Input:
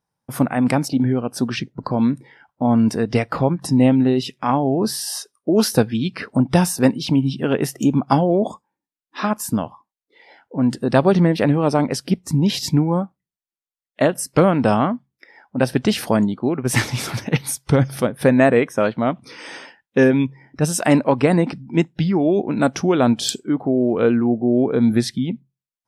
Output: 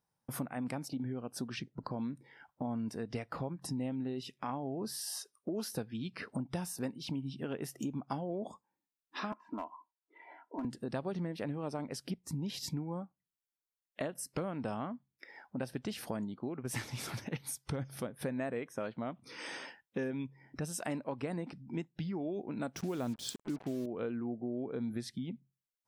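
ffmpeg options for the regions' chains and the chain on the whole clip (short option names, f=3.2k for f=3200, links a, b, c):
-filter_complex "[0:a]asettb=1/sr,asplit=3[a][b][c];[a]atrim=end=9.324[d];[b]atrim=start=9.32:end=10.65,asetpts=PTS-STARTPTS,afade=t=in:d=0.004:c=qsin,afade=t=out:st=1.326:d=0.004:c=qsin,highpass=f=240:w=0.5412,highpass=f=240:w=1.3066,equalizer=f=250:t=q:w=4:g=-4,equalizer=f=400:t=q:w=4:g=-7,equalizer=f=610:t=q:w=4:g=-4,equalizer=f=940:t=q:w=4:g=7,equalizer=f=1.7k:t=q:w=4:g=-5,lowpass=f=2k:w=0.5412,lowpass=f=2k:w=1.3066,aecho=1:1:3:0.78,atrim=end_sample=58653,aeval=exprs='clip(val(0),-1,0.141)':c=same[e];[c]atrim=start=10.646[f];[d][e]acrossfade=d=0.004:c1=hsin:c2=qsin[g];[g][f]acrossfade=d=0.004:c1=qsin:c2=hsin,asettb=1/sr,asplit=3[h][i][j];[h]atrim=end=22.764[k];[i]atrim=start=22.76:end=23.86,asetpts=PTS-STARTPTS,afade=t=in:d=0.004:c=qsin,afade=t=out:st=1.096:d=0.004:c=qsin,lowshelf=f=270:g=6,acrusher=bits=4:mix=0:aa=0.5[l];[j]atrim=start=23.856[m];[k][l]acrossfade=d=0.004:c1=hsin:c2=qsin[n];[n][m]acrossfade=d=0.004:c1=qsin:c2=hsin,highshelf=f=11k:g=4.5,acompressor=threshold=-35dB:ratio=3,volume=-5.5dB"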